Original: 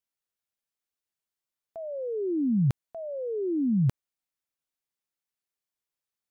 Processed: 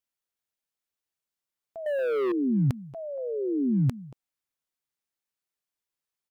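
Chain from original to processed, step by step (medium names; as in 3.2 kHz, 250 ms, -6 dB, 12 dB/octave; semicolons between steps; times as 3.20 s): speakerphone echo 230 ms, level -9 dB; 1.86–2.32 s: waveshaping leveller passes 3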